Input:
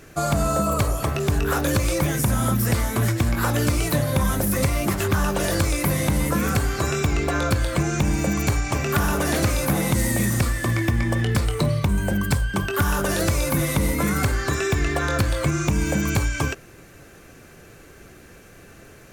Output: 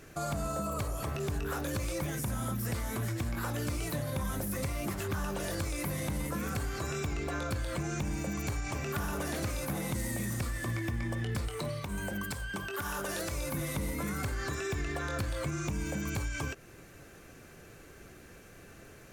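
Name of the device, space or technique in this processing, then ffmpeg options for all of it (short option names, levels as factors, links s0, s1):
stacked limiters: -filter_complex "[0:a]asettb=1/sr,asplit=3[s0][s1][s2];[s0]atrim=end=11.484[s3];[s1]atrim=start=11.48:end=13.32,asetpts=PTS-STARTPTS,afade=t=in:d=0.004:c=qsin,afade=t=out:st=1.836:d=0.004:c=qsin,lowshelf=f=240:g=-10[s4];[s2]atrim=start=13.316[s5];[s3][s4]acrossfade=d=0.004:c1=hsin:c2=qsin[s6];[s6][s5]acrossfade=d=0.004:c1=qsin:c2=hsin,alimiter=limit=0.141:level=0:latency=1:release=79,alimiter=limit=0.0944:level=0:latency=1:release=195,volume=0.501"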